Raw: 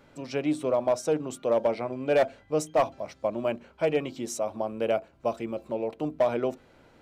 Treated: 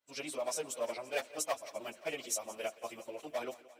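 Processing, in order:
downward expander −44 dBFS
time stretch by phase vocoder 0.54×
spectral tilt +4.5 dB per octave
on a send: feedback echo with a high-pass in the loop 173 ms, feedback 71%, high-pass 160 Hz, level −18.5 dB
on the sum: level −5.5 dB

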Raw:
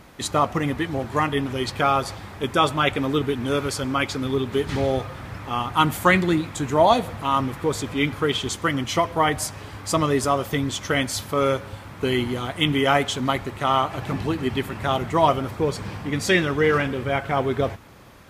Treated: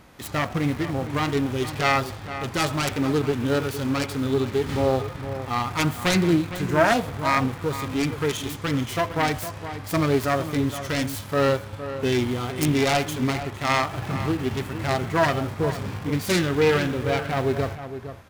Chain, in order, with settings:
phase distortion by the signal itself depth 0.46 ms
in parallel at −11 dB: bit reduction 5 bits
on the sum: harmonic and percussive parts rebalanced percussive −9 dB
slap from a distant wall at 79 metres, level −11 dB

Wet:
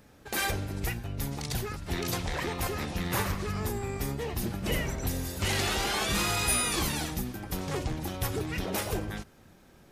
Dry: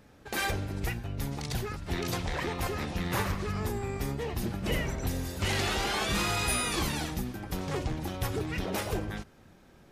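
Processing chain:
high-shelf EQ 6,900 Hz +7 dB

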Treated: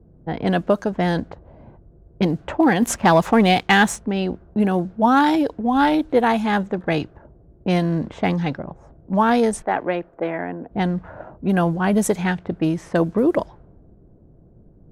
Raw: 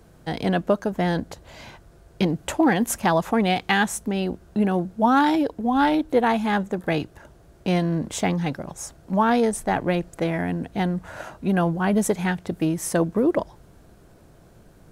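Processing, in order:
0:09.62–0:10.71: three-way crossover with the lows and the highs turned down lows −15 dB, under 280 Hz, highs −14 dB, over 2,800 Hz
low-pass that shuts in the quiet parts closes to 360 Hz, open at −17.5 dBFS
0:02.82–0:03.96: leveller curve on the samples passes 1
level +2.5 dB

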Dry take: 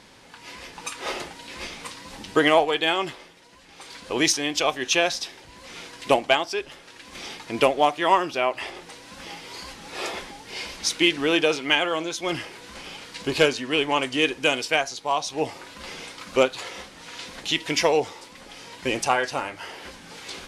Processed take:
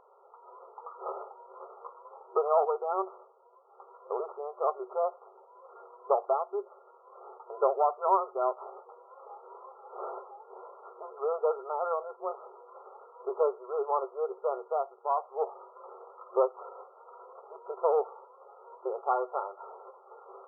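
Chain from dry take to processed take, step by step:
tube saturation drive 14 dB, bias 0.5
brick-wall band-pass 370–1,400 Hz
level −2 dB

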